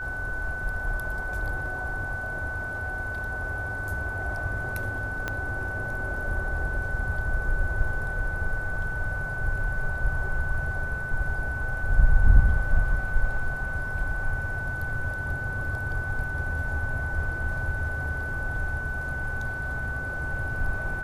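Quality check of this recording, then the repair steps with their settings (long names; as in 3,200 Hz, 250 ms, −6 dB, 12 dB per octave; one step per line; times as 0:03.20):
whistle 1,500 Hz −31 dBFS
0:05.28: click −15 dBFS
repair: click removal
notch filter 1,500 Hz, Q 30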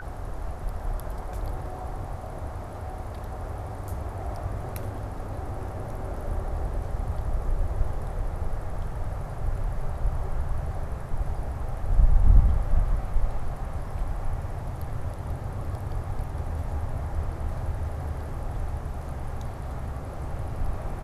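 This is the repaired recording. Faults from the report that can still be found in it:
0:05.28: click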